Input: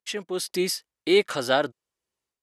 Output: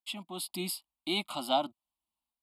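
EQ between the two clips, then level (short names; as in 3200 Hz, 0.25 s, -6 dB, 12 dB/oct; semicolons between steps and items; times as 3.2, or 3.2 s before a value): fixed phaser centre 450 Hz, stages 6; fixed phaser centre 1700 Hz, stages 6; 0.0 dB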